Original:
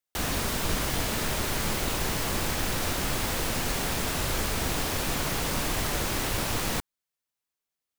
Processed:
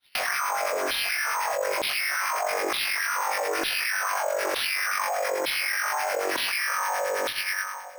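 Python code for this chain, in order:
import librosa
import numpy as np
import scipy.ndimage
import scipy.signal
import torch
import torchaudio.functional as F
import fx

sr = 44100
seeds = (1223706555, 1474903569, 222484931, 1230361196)

p1 = fx.self_delay(x, sr, depth_ms=0.37)
p2 = fx.peak_eq(p1, sr, hz=2400.0, db=-2.0, octaves=0.77)
p3 = (np.mod(10.0 ** (22.5 / 20.0) * p2 + 1.0, 2.0) - 1.0) / 10.0 ** (22.5 / 20.0)
p4 = p2 + (p3 * librosa.db_to_amplitude(-7.5))
p5 = fx.wah_lfo(p4, sr, hz=3.7, low_hz=510.0, high_hz=2400.0, q=9.0)
p6 = p5 + fx.room_flutter(p5, sr, wall_m=3.6, rt60_s=1.4, dry=0)
p7 = fx.harmonic_tremolo(p6, sr, hz=9.4, depth_pct=70, crossover_hz=1200.0)
p8 = fx.filter_lfo_highpass(p7, sr, shape='saw_down', hz=1.1, low_hz=300.0, high_hz=4000.0, q=4.4)
p9 = np.repeat(p8[::6], 6)[:len(p8)]
y = fx.env_flatten(p9, sr, amount_pct=100)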